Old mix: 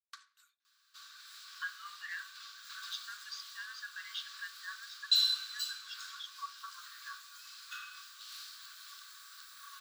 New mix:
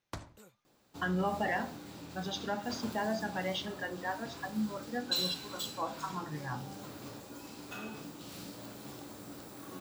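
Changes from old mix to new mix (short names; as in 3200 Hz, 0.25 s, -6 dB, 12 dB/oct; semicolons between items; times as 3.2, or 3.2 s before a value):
speech: entry -0.60 s; second sound -6.0 dB; master: remove rippled Chebyshev high-pass 1100 Hz, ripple 9 dB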